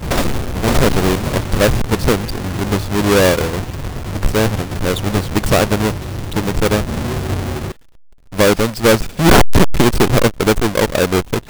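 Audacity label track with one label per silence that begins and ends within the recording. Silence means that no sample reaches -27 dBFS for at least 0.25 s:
7.720000	8.330000	silence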